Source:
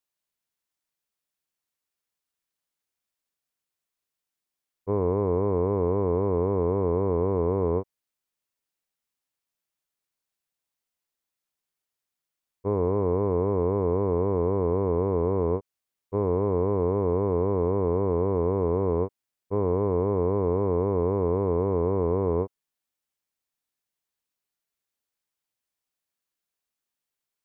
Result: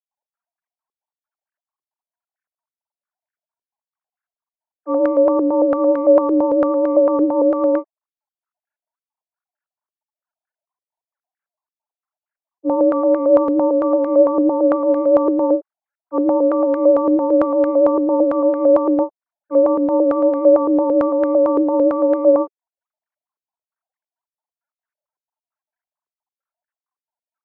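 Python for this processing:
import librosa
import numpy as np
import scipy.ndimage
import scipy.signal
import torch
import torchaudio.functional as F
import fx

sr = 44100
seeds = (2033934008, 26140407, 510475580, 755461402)

y = fx.sine_speech(x, sr)
y = y * np.sin(2.0 * np.pi * 130.0 * np.arange(len(y)) / sr)
y = fx.filter_held_lowpass(y, sr, hz=8.9, low_hz=400.0, high_hz=1600.0)
y = y * librosa.db_to_amplitude(7.5)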